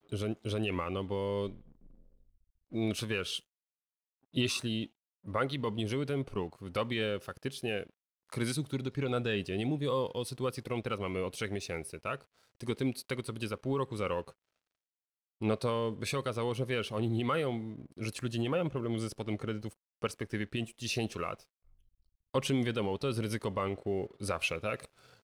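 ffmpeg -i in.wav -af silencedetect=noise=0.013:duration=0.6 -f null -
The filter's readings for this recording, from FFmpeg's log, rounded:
silence_start: 1.54
silence_end: 2.74 | silence_duration: 1.19
silence_start: 3.38
silence_end: 4.36 | silence_duration: 0.98
silence_start: 14.29
silence_end: 15.42 | silence_duration: 1.12
silence_start: 21.35
silence_end: 22.34 | silence_duration: 1.00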